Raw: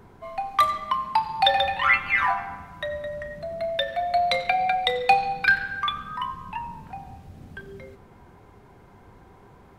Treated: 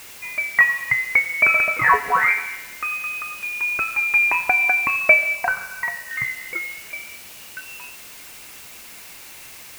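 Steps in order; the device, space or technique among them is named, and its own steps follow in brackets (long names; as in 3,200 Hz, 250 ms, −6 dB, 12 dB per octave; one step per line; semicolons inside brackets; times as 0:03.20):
scrambled radio voice (band-pass filter 350–3,000 Hz; voice inversion scrambler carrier 3,100 Hz; white noise bed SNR 19 dB)
0:05.35–0:06.11: thirty-one-band graphic EQ 315 Hz −10 dB, 1,000 Hz +7 dB, 1,600 Hz −11 dB, 3,150 Hz −6 dB
level +5 dB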